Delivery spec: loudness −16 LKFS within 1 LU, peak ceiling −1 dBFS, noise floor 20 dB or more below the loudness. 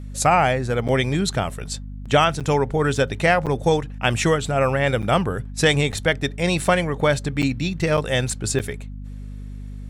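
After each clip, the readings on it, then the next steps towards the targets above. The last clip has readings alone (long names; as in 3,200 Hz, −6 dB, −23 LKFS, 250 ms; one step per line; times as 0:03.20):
number of dropouts 8; longest dropout 7.3 ms; mains hum 50 Hz; hum harmonics up to 250 Hz; level of the hum −31 dBFS; integrated loudness −21.0 LKFS; sample peak −3.5 dBFS; target loudness −16.0 LKFS
→ repair the gap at 0:00.88/0:02.40/0:03.46/0:05.02/0:05.92/0:07.42/0:07.97/0:08.59, 7.3 ms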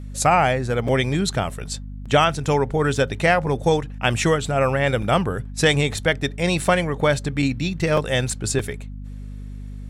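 number of dropouts 0; mains hum 50 Hz; hum harmonics up to 250 Hz; level of the hum −31 dBFS
→ hum removal 50 Hz, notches 5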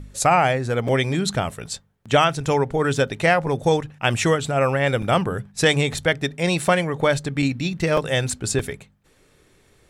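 mains hum none found; integrated loudness −21.0 LKFS; sample peak −3.0 dBFS; target loudness −16.0 LKFS
→ level +5 dB
brickwall limiter −1 dBFS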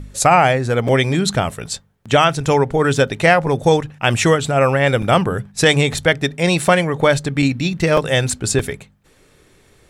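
integrated loudness −16.5 LKFS; sample peak −1.0 dBFS; background noise floor −53 dBFS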